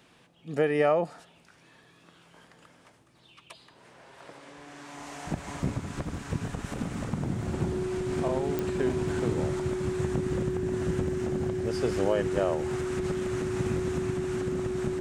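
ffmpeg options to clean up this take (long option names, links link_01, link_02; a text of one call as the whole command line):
ffmpeg -i in.wav -af "adeclick=threshold=4,bandreject=frequency=370:width=30" out.wav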